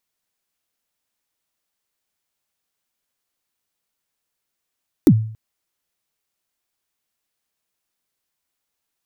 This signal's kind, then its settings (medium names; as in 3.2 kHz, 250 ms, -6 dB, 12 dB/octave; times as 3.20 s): kick drum length 0.28 s, from 360 Hz, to 110 Hz, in 61 ms, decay 0.53 s, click on, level -4 dB